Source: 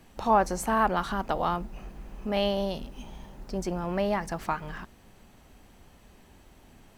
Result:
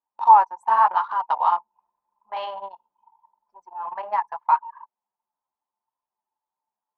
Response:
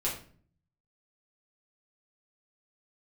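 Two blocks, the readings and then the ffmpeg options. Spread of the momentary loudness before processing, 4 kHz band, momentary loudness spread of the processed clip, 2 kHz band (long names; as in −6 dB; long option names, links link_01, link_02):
20 LU, −7.5 dB, 19 LU, −1.0 dB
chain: -af "highpass=frequency=940:width_type=q:width=10,flanger=delay=6.7:depth=8.6:regen=-17:speed=0.83:shape=triangular,anlmdn=63.1"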